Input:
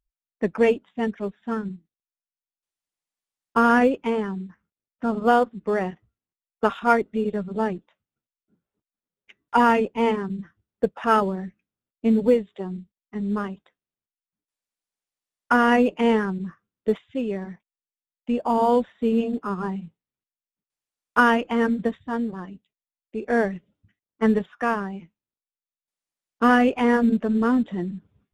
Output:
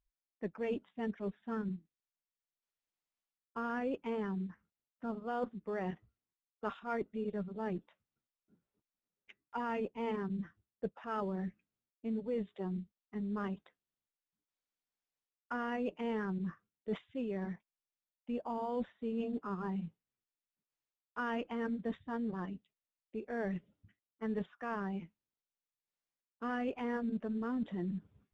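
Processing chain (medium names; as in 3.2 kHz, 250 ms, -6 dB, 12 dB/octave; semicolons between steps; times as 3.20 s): reverse; compression 6:1, threshold -32 dBFS, peak gain reduction 19 dB; reverse; distance through air 74 m; trim -3 dB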